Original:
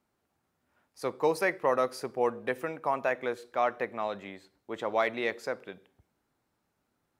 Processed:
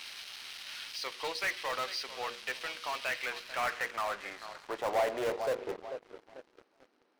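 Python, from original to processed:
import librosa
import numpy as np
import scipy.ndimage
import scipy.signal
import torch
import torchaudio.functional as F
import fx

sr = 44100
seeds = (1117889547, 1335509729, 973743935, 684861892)

p1 = x + 0.5 * 10.0 ** (-27.0 / 20.0) * np.diff(np.sign(x), prepend=np.sign(x[:1]))
p2 = scipy.signal.sosfilt(scipy.signal.butter(4, 190.0, 'highpass', fs=sr, output='sos'), p1)
p3 = fx.notch(p2, sr, hz=3500.0, q=20.0)
p4 = fx.filter_sweep_bandpass(p3, sr, from_hz=3200.0, to_hz=310.0, start_s=2.96, end_s=6.25, q=1.6)
p5 = scipy.signal.savgol_filter(p4, 15, 4, mode='constant')
p6 = fx.hum_notches(p5, sr, base_hz=60, count=8)
p7 = p6 + fx.echo_tape(p6, sr, ms=441, feedback_pct=50, wet_db=-13.0, lp_hz=1100.0, drive_db=20.0, wow_cents=12, dry=0)
p8 = fx.leveller(p7, sr, passes=3)
p9 = (np.mod(10.0 ** (25.0 / 20.0) * p8 + 1.0, 2.0) - 1.0) / 10.0 ** (25.0 / 20.0)
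p10 = p8 + (p9 * 10.0 ** (-10.5 / 20.0))
p11 = fx.doppler_dist(p10, sr, depth_ms=0.29)
y = p11 * 10.0 ** (-5.0 / 20.0)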